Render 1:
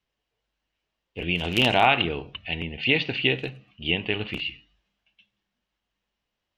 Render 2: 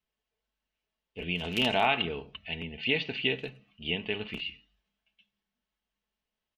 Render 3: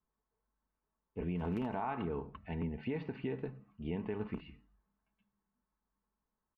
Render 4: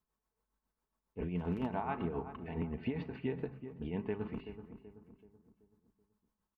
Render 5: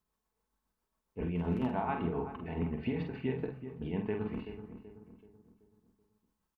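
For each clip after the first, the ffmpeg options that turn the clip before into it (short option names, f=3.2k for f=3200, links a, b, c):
-af "aecho=1:1:4.6:0.42,volume=-7dB"
-af "firequalizer=gain_entry='entry(290,0);entry(660,-7);entry(970,3);entry(3000,-29);entry(4300,-24)':delay=0.05:min_phase=1,acompressor=threshold=-32dB:ratio=6,alimiter=level_in=7dB:limit=-24dB:level=0:latency=1:release=157,volume=-7dB,volume=3.5dB"
-filter_complex "[0:a]tremolo=f=7.3:d=0.6,asplit=2[a][b];[b]adelay=380,lowpass=f=1.3k:p=1,volume=-10.5dB,asplit=2[c][d];[d]adelay=380,lowpass=f=1.3k:p=1,volume=0.45,asplit=2[e][f];[f]adelay=380,lowpass=f=1.3k:p=1,volume=0.45,asplit=2[g][h];[h]adelay=380,lowpass=f=1.3k:p=1,volume=0.45,asplit=2[i][j];[j]adelay=380,lowpass=f=1.3k:p=1,volume=0.45[k];[a][c][e][g][i][k]amix=inputs=6:normalize=0,volume=2.5dB"
-filter_complex "[0:a]asplit=2[a][b];[b]adelay=47,volume=-5.5dB[c];[a][c]amix=inputs=2:normalize=0,volume=2dB"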